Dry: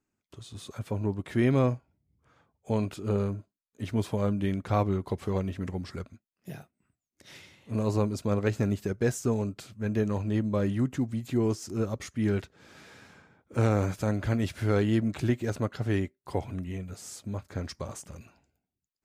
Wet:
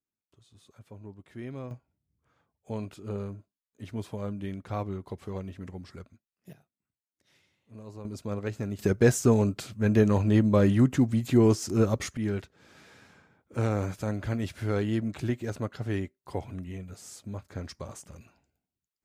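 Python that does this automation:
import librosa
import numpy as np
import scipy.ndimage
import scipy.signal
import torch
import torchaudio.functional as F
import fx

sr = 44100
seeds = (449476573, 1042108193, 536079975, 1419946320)

y = fx.gain(x, sr, db=fx.steps((0.0, -15.5), (1.71, -7.0), (6.53, -17.0), (8.05, -6.0), (8.79, 6.0), (12.17, -3.0)))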